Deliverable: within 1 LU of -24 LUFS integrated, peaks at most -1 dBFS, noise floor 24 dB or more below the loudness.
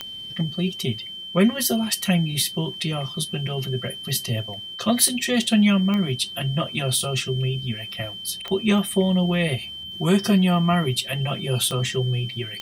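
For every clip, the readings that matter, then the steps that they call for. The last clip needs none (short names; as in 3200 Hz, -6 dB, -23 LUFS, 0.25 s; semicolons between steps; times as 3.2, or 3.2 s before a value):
clicks 6; steady tone 3100 Hz; tone level -33 dBFS; loudness -23.0 LUFS; peak -3.5 dBFS; loudness target -24.0 LUFS
-> de-click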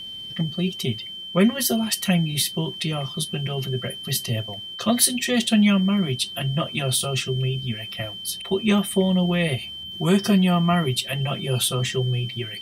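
clicks 0; steady tone 3100 Hz; tone level -33 dBFS
-> notch 3100 Hz, Q 30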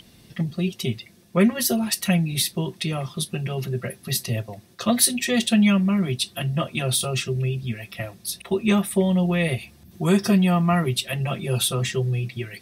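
steady tone none; loudness -23.0 LUFS; peak -3.5 dBFS; loudness target -24.0 LUFS
-> gain -1 dB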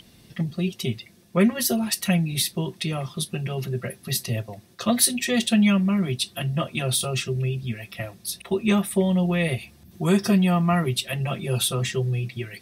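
loudness -24.0 LUFS; peak -4.5 dBFS; noise floor -54 dBFS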